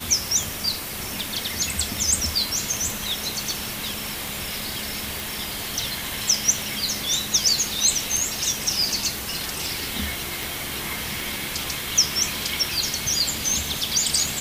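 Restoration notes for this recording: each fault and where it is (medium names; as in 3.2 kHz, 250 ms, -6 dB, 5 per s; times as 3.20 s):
tick 78 rpm
5.20 s: pop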